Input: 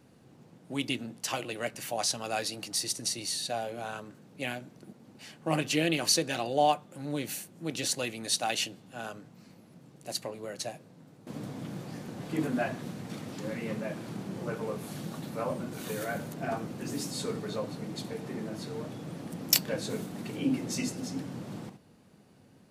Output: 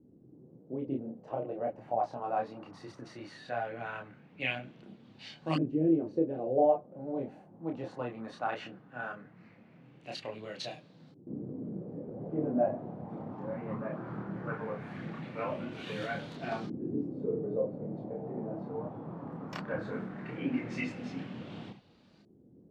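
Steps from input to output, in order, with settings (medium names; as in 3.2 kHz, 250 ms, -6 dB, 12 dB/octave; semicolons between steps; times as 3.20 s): LFO low-pass saw up 0.18 Hz 320–4400 Hz; chorus voices 2, 0.53 Hz, delay 28 ms, depth 3.8 ms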